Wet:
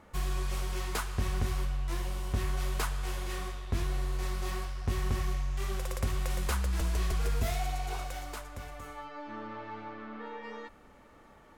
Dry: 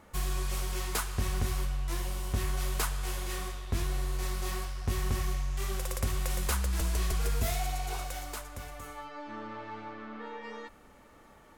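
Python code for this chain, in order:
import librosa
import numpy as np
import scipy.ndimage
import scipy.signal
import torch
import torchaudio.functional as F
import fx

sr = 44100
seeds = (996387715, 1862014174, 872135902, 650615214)

y = fx.high_shelf(x, sr, hz=5900.0, db=-8.0)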